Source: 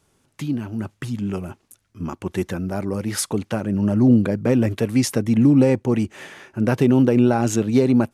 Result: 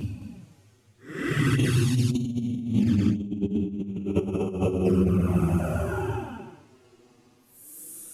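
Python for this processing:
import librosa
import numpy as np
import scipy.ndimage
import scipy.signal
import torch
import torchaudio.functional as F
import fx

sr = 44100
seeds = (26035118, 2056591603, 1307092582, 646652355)

y = fx.spec_repair(x, sr, seeds[0], start_s=0.64, length_s=0.23, low_hz=280.0, high_hz=2400.0, source='both')
y = fx.paulstretch(y, sr, seeds[1], factor=9.3, window_s=0.1, from_s=0.87)
y = y + 10.0 ** (-8.0 / 20.0) * np.pad(y, (int(216 * sr / 1000.0), 0))[:len(y)]
y = fx.env_flanger(y, sr, rest_ms=8.5, full_db=-22.5)
y = fx.peak_eq(y, sr, hz=350.0, db=6.0, octaves=1.5)
y = fx.over_compress(y, sr, threshold_db=-26.0, ratio=-0.5)
y = y * 10.0 ** (3.0 / 20.0)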